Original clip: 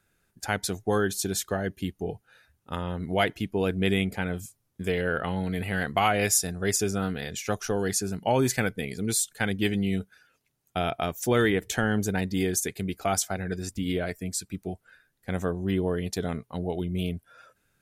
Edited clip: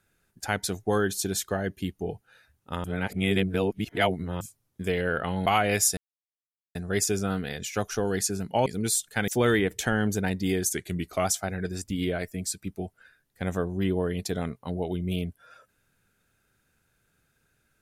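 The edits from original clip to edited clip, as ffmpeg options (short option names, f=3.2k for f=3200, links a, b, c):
-filter_complex "[0:a]asplit=9[a][b][c][d][e][f][g][h][i];[a]atrim=end=2.842[j];[b]atrim=start=2.838:end=4.412,asetpts=PTS-STARTPTS,areverse[k];[c]atrim=start=4.408:end=5.462[l];[d]atrim=start=5.958:end=6.47,asetpts=PTS-STARTPTS,afade=t=out:st=0.508:d=0.004:c=hsin,apad=pad_dur=0.78[m];[e]atrim=start=6.47:end=8.382,asetpts=PTS-STARTPTS,afade=t=in:d=0.004:c=hsin[n];[f]atrim=start=8.898:end=9.522[o];[g]atrim=start=11.188:end=12.644[p];[h]atrim=start=12.64:end=13.12,asetpts=PTS-STARTPTS,asetrate=41013,aresample=44100,atrim=end_sample=22761,asetpts=PTS-STARTPTS[q];[i]atrim=start=13.116[r];[j][k]acrossfade=d=0.004:c1=hsin:c2=hsin[s];[s][l]acrossfade=d=0.004:c1=hsin:c2=hsin[t];[m][n]concat=n=2:v=0:a=1[u];[t][u]acrossfade=d=0.004:c1=hsin:c2=hsin[v];[v][o]acrossfade=d=0.004:c1=hsin:c2=hsin[w];[w][p]acrossfade=d=0.004:c1=hsin:c2=hsin[x];[x][q]acrossfade=d=0.004:c1=hsin:c2=hsin[y];[y][r]acrossfade=d=0.004:c1=hsin:c2=hsin"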